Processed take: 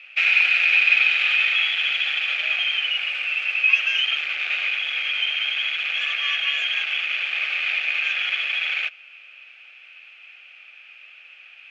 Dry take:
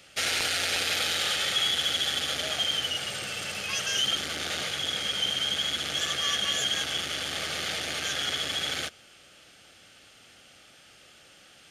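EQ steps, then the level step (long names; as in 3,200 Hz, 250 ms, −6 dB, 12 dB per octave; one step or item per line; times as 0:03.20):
high-pass filter 880 Hz 12 dB per octave
low-pass with resonance 2,500 Hz, resonance Q 15
−2.0 dB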